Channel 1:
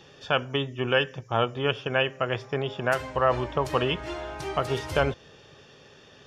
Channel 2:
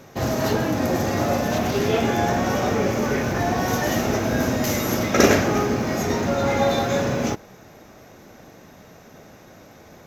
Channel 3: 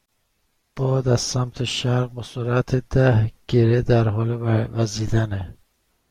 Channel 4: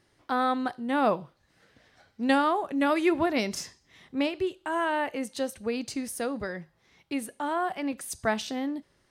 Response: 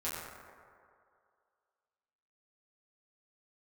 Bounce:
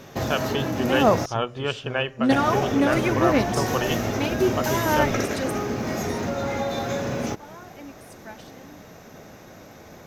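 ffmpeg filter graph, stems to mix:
-filter_complex "[0:a]volume=-1.5dB[a];[1:a]acompressor=threshold=-25dB:ratio=6,volume=1.5dB,asplit=3[b][c][d];[b]atrim=end=1.26,asetpts=PTS-STARTPTS,afade=t=out:st=1.256:d=0.004:c=hsin[e];[c]atrim=start=1.26:end=2.3,asetpts=PTS-STARTPTS,volume=0[f];[d]atrim=start=2.3,asetpts=PTS-STARTPTS,afade=t=in:d=0.004:c=hsin[g];[e][f][g]concat=n=3:v=0:a=1[h];[2:a]volume=-14.5dB,asplit=2[i][j];[3:a]aphaser=in_gain=1:out_gain=1:delay=3.4:decay=0.53:speed=0.9:type=sinusoidal,volume=0.5dB[k];[j]apad=whole_len=401519[l];[k][l]sidechaingate=range=-17dB:threshold=-53dB:ratio=16:detection=peak[m];[a][h][i][m]amix=inputs=4:normalize=0"

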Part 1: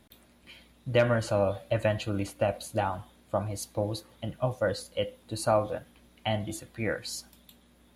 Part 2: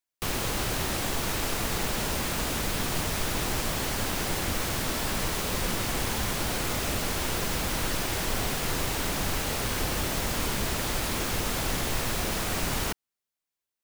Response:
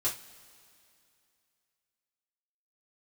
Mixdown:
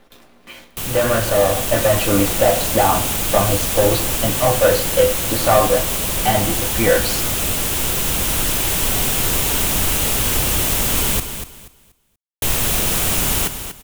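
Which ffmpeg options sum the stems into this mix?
-filter_complex "[0:a]asplit=2[a][b];[b]highpass=f=720:p=1,volume=23dB,asoftclip=type=tanh:threshold=-11.5dB[c];[a][c]amix=inputs=2:normalize=0,lowpass=f=1.2k:p=1,volume=-6dB,acrusher=bits=8:dc=4:mix=0:aa=0.000001,volume=-2.5dB,asplit=2[d][e];[e]volume=-3.5dB[f];[1:a]aexciter=amount=2:drive=3.1:freq=2.6k,adelay=550,volume=-1.5dB,asplit=3[g][h][i];[g]atrim=end=11.2,asetpts=PTS-STARTPTS,afade=t=out:st=11.196:d=0.004:c=hsin[j];[h]atrim=start=11.2:end=12.42,asetpts=PTS-STARTPTS,volume=0[k];[i]atrim=start=12.42,asetpts=PTS-STARTPTS,afade=t=in:d=0.004:c=hsin[l];[j][k][l]concat=n=3:v=0:a=1,asplit=2[m][n];[n]volume=-9.5dB[o];[2:a]atrim=start_sample=2205[p];[f][p]afir=irnorm=-1:irlink=0[q];[o]aecho=0:1:240|480|720|960:1|0.25|0.0625|0.0156[r];[d][m][q][r]amix=inputs=4:normalize=0,dynaudnorm=f=180:g=17:m=7.5dB,lowshelf=f=190:g=3"

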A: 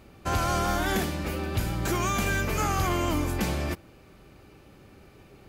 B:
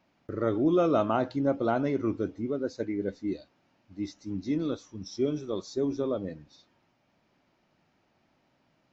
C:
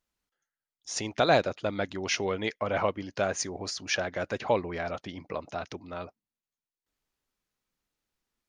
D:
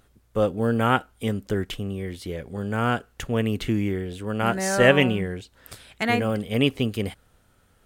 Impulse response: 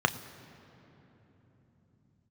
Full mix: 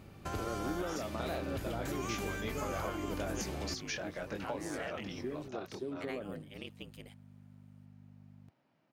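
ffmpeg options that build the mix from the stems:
-filter_complex "[0:a]acompressor=threshold=-37dB:ratio=3,volume=-3.5dB,asplit=2[a][b];[b]volume=-17.5dB[c];[1:a]highshelf=f=4.2k:g=-10,adelay=50,volume=-4.5dB[d];[2:a]flanger=delay=20:depth=5.8:speed=0.44,aeval=exprs='val(0)+0.00398*(sin(2*PI*50*n/s)+sin(2*PI*2*50*n/s)/2+sin(2*PI*3*50*n/s)/3+sin(2*PI*4*50*n/s)/4+sin(2*PI*5*50*n/s)/5)':c=same,volume=-0.5dB[e];[3:a]lowshelf=f=380:g=-11.5,aeval=exprs='val(0)*sin(2*PI*53*n/s)':c=same,volume=-15.5dB[f];[a][f]amix=inputs=2:normalize=0,alimiter=level_in=5.5dB:limit=-24dB:level=0:latency=1:release=187,volume=-5.5dB,volume=0dB[g];[d][e]amix=inputs=2:normalize=0,highpass=f=100:w=0.5412,highpass=f=100:w=1.3066,acompressor=threshold=-37dB:ratio=5,volume=0dB[h];[c]aecho=0:1:944:1[i];[g][h][i]amix=inputs=3:normalize=0"

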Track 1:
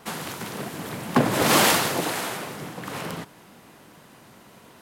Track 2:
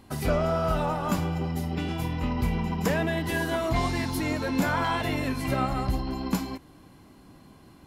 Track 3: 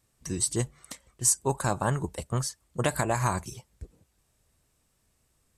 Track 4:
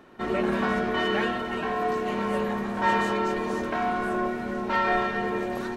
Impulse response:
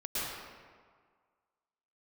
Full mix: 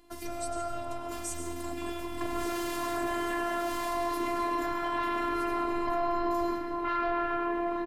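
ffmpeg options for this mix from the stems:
-filter_complex "[0:a]asoftclip=type=hard:threshold=-9.5dB,adelay=1050,volume=-10.5dB,asplit=2[a][b];[b]volume=-5.5dB[c];[1:a]alimiter=limit=-22dB:level=0:latency=1:release=74,volume=-4.5dB,asplit=2[d][e];[e]volume=-8.5dB[f];[2:a]volume=-12dB,asplit=2[g][h];[h]volume=-9.5dB[i];[3:a]lowpass=2.2k,aecho=1:1:1:0.59,asoftclip=type=tanh:threshold=-14.5dB,adelay=2150,volume=-1.5dB,asplit=2[j][k];[k]volume=-10dB[l];[4:a]atrim=start_sample=2205[m];[f][i][l]amix=inputs=3:normalize=0[n];[n][m]afir=irnorm=-1:irlink=0[o];[c]aecho=0:1:1127:1[p];[a][d][g][j][o][p]amix=inputs=6:normalize=0,afftfilt=real='hypot(re,im)*cos(PI*b)':imag='0':win_size=512:overlap=0.75,alimiter=limit=-18.5dB:level=0:latency=1:release=35"

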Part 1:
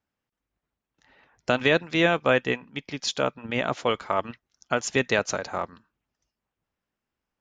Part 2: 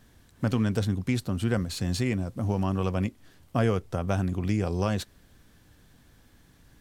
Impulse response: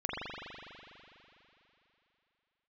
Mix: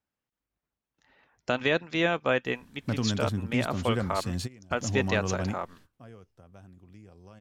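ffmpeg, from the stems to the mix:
-filter_complex "[0:a]volume=-4.5dB,asplit=2[a][b];[1:a]adelay=2450,volume=-3.5dB[c];[b]apad=whole_len=408020[d];[c][d]sidechaingate=range=-21dB:threshold=-57dB:ratio=16:detection=peak[e];[a][e]amix=inputs=2:normalize=0"

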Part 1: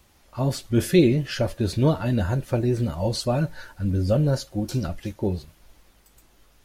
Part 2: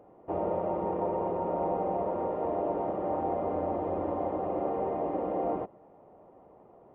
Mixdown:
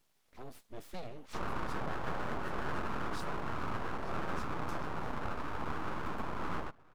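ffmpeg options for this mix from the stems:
-filter_complex "[0:a]acompressor=threshold=-43dB:ratio=1.5,volume=-13dB[a];[1:a]adelay=1050,volume=-4dB[b];[a][b]amix=inputs=2:normalize=0,highpass=78,aeval=exprs='abs(val(0))':c=same"

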